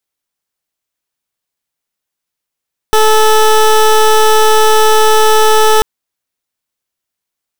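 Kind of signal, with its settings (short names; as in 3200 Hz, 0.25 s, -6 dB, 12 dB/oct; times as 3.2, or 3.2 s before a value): pulse 434 Hz, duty 19% -7 dBFS 2.89 s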